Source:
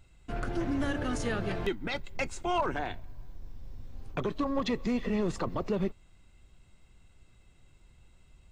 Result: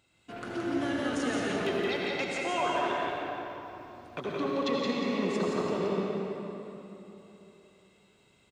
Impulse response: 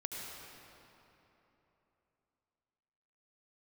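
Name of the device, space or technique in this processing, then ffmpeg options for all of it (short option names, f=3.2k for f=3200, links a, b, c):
stadium PA: -filter_complex "[0:a]highpass=200,equalizer=f=3.5k:t=o:w=1.1:g=4,aecho=1:1:172|230.3:0.631|0.282[a];[1:a]atrim=start_sample=2205[b];[a][b]afir=irnorm=-1:irlink=0"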